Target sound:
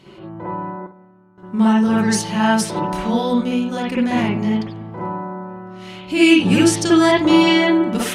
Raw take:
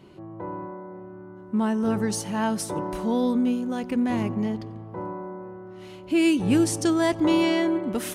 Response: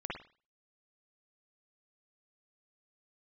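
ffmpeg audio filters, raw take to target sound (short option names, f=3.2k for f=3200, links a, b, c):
-filter_complex "[0:a]asettb=1/sr,asplit=3[a][b][c];[a]atrim=end=0.814[d];[b]atrim=start=0.81:end=1.38,asetpts=PTS-STARTPTS,afade=t=in:d=0.004:c=qsin,afade=t=out:st=0.566:d=0.004:c=qsin,agate=range=-33dB:threshold=-30dB:ratio=3:detection=peak[e];[c]atrim=start=1.376[f];[d][e]acrossfade=d=0.004:c1=hsin:c2=qsin[g];[g][f]acrossfade=d=0.004:c1=qsin:c2=hsin,equalizer=f=4.5k:w=0.42:g=9.5[h];[1:a]atrim=start_sample=2205,afade=t=out:st=0.16:d=0.01,atrim=end_sample=7497[i];[h][i]afir=irnorm=-1:irlink=0,volume=5dB"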